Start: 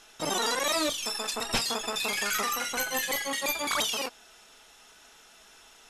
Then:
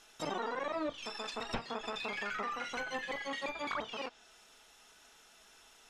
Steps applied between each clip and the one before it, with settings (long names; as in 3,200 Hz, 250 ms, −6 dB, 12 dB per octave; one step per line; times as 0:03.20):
treble cut that deepens with the level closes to 1,400 Hz, closed at −24 dBFS
level −6 dB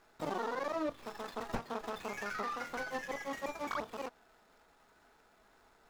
running median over 15 samples
level +1 dB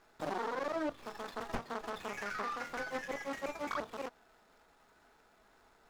highs frequency-modulated by the lows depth 0.71 ms